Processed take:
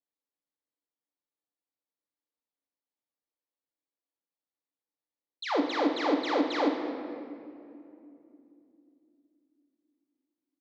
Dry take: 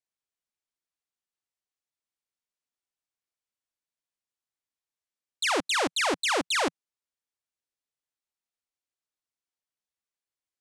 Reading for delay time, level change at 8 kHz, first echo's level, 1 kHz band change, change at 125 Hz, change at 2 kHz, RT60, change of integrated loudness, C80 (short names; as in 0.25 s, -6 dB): 49 ms, -21.0 dB, -10.0 dB, -1.5 dB, n/a, -8.0 dB, 2.7 s, -3.5 dB, 6.5 dB